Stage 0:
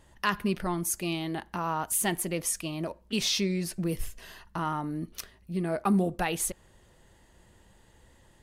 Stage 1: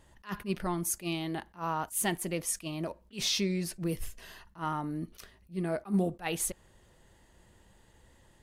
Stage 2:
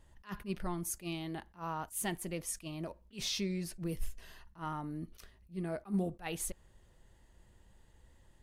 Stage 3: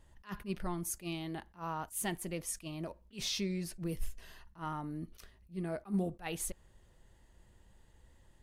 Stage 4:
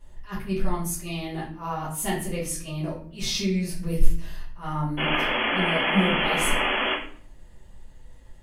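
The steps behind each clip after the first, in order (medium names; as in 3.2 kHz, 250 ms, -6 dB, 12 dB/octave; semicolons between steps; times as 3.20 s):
attacks held to a fixed rise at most 280 dB/s; trim -2 dB
bass shelf 80 Hz +10.5 dB; trim -6.5 dB
no audible change
painted sound noise, 4.97–6.94 s, 210–3400 Hz -34 dBFS; reverberation RT60 0.55 s, pre-delay 4 ms, DRR -9 dB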